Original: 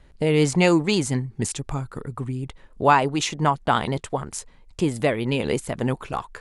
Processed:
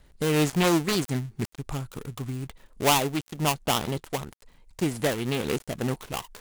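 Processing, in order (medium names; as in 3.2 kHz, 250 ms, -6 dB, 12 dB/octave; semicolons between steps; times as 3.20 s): dead-time distortion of 0.26 ms; treble shelf 5.5 kHz +10.5 dB; loudspeaker Doppler distortion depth 0.23 ms; trim -4 dB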